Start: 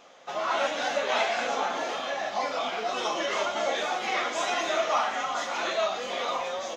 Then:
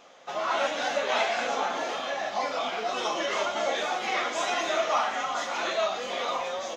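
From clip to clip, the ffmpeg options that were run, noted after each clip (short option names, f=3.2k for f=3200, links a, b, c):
-af anull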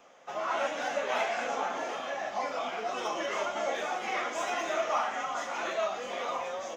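-filter_complex "[0:a]acrossover=split=190|610|3400[a][b][c][d];[d]aeval=exprs='clip(val(0),-1,0.0188)':c=same[e];[a][b][c][e]amix=inputs=4:normalize=0,equalizer=f=4k:w=2.2:g=-8.5,volume=-3.5dB"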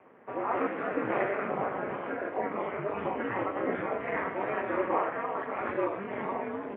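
-af "highpass=f=250:t=q:w=0.5412,highpass=f=250:t=q:w=1.307,lowpass=f=2.4k:t=q:w=0.5176,lowpass=f=2.4k:t=q:w=0.7071,lowpass=f=2.4k:t=q:w=1.932,afreqshift=-190,aeval=exprs='val(0)*sin(2*PI*100*n/s)':c=same,highpass=f=96:w=0.5412,highpass=f=96:w=1.3066,volume=4dB"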